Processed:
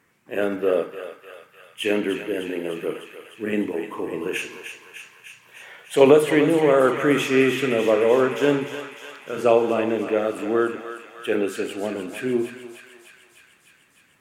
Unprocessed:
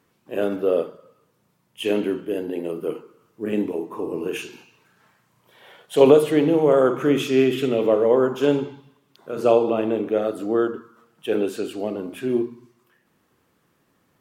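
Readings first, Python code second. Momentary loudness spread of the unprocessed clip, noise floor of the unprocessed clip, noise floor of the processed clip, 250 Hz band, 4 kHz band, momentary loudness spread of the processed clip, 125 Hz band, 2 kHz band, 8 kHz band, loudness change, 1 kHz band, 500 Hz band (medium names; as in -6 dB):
15 LU, -67 dBFS, -58 dBFS, -1.0 dB, +2.0 dB, 19 LU, -1.0 dB, +7.5 dB, no reading, 0.0 dB, +2.0 dB, -0.5 dB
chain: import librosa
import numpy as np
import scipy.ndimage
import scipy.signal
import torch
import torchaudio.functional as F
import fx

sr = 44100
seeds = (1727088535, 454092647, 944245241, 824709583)

p1 = fx.graphic_eq(x, sr, hz=(2000, 4000, 8000), db=(11, -4, 5))
p2 = p1 + fx.echo_thinned(p1, sr, ms=302, feedback_pct=76, hz=980.0, wet_db=-7.5, dry=0)
y = p2 * librosa.db_to_amplitude(-1.0)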